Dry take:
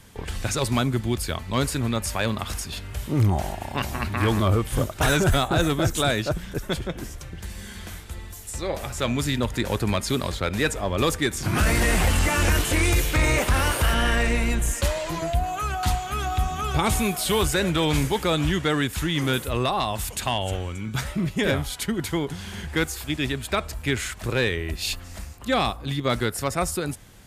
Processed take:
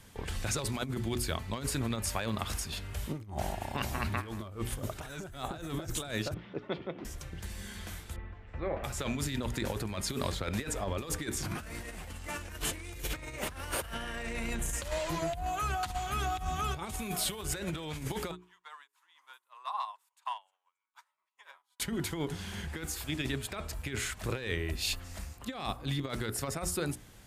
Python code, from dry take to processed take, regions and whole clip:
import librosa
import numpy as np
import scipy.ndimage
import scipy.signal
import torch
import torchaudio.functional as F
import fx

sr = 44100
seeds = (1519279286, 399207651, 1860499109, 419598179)

y = fx.chain(x, sr, fx.bandpass_edges(low_hz=220.0, high_hz=4900.0),
    fx.air_absorb(metres=330.0),
    fx.notch(hz=1600.0, q=5.8), at=(6.34, 7.05))
y = fx.chain(y, sr, fx.lowpass(hz=2300.0, slope=24),
    fx.notch(hz=930.0, q=25.0), at=(8.16, 8.84))
y = fx.chain(y, sr, fx.ladder_highpass(hz=920.0, resonance_pct=75),
    fx.upward_expand(threshold_db=-48.0, expansion=2.5), at=(18.31, 21.8))
y = fx.hum_notches(y, sr, base_hz=60, count=7)
y = fx.over_compress(y, sr, threshold_db=-26.0, ratio=-0.5)
y = y * 10.0 ** (-8.0 / 20.0)